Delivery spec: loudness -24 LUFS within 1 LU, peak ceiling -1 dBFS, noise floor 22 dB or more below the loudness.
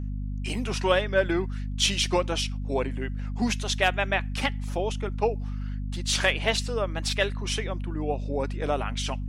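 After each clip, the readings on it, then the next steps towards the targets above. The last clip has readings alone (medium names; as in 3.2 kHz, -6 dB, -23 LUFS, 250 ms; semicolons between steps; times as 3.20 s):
hum 50 Hz; highest harmonic 250 Hz; hum level -29 dBFS; loudness -27.5 LUFS; peak level -8.0 dBFS; loudness target -24.0 LUFS
-> de-hum 50 Hz, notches 5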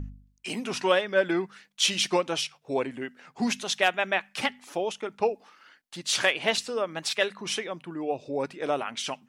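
hum not found; loudness -28.0 LUFS; peak level -9.0 dBFS; loudness target -24.0 LUFS
-> trim +4 dB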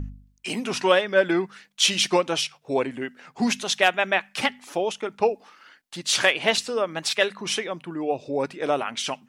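loudness -24.0 LUFS; peak level -5.0 dBFS; noise floor -63 dBFS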